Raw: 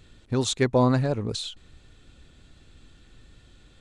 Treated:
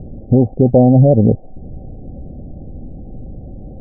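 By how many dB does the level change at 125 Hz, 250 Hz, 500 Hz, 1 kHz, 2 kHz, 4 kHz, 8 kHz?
+14.5 dB, +14.0 dB, +11.5 dB, +6.0 dB, under -35 dB, under -40 dB, under -40 dB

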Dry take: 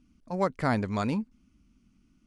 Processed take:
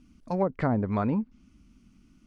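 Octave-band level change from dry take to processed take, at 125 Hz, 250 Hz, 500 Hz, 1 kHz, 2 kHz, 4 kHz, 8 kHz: +2.5 dB, +2.5 dB, +1.5 dB, -1.0 dB, -5.0 dB, under -10 dB, under -10 dB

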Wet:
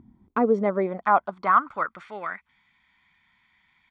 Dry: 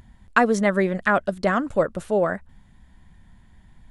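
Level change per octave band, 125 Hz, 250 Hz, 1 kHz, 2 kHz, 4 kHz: no reading, -5.5 dB, +2.5 dB, -7.5 dB, under -10 dB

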